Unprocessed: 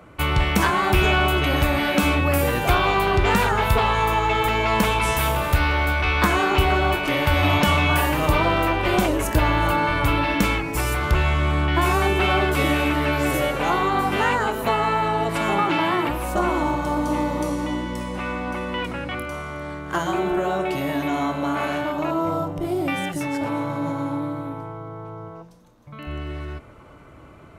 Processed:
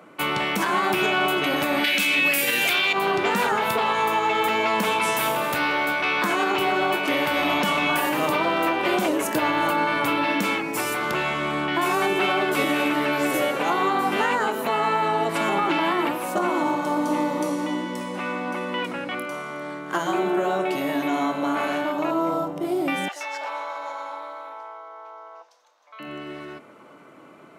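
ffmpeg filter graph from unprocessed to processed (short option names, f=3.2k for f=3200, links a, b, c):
-filter_complex "[0:a]asettb=1/sr,asplit=3[a][b][c];[a]atrim=end=1.844[d];[b]atrim=start=1.84:end=2.93,asetpts=PTS-STARTPTS,afade=t=in:d=0.004:c=qsin,afade=t=out:st=1.086:d=0.004:c=qsin,highpass=87,highshelf=f=1.6k:t=q:w=1.5:g=12[e];[c]atrim=start=2.926[f];[d][e]acrossfade=d=0.004:c1=hsin:c2=qsin[g];[g][f]acrossfade=d=0.004:c1=qsin:c2=hsin,asettb=1/sr,asplit=3[h][i][j];[h]atrim=end=23.084[k];[i]atrim=start=23.08:end=26,asetpts=PTS-STARTPTS,afade=t=in:d=0.004:c=qsin,afade=t=out:st=2.916:d=0.004:c=qsin,highpass=f=640:w=0.5412,highpass=f=640:w=1.3066,highshelf=f=7.7k:t=q:w=1.5:g=-8.5[l];[j]atrim=start=25.996[m];[k][l]acrossfade=d=0.004:c1=hsin:c2=qsin[n];[n][m]acrossfade=d=0.004:c1=qsin:c2=hsin,highpass=f=190:w=0.5412,highpass=f=190:w=1.3066,alimiter=limit=-12.5dB:level=0:latency=1:release=86"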